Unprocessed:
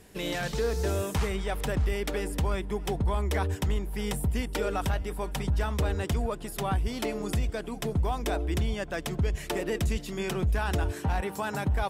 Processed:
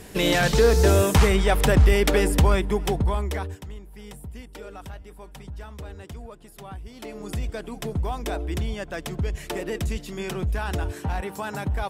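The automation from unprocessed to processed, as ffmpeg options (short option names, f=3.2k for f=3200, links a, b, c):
-af "volume=22dB,afade=t=out:st=2.27:d=1:silence=0.316228,afade=t=out:st=3.27:d=0.36:silence=0.266073,afade=t=in:st=6.94:d=0.57:silence=0.281838"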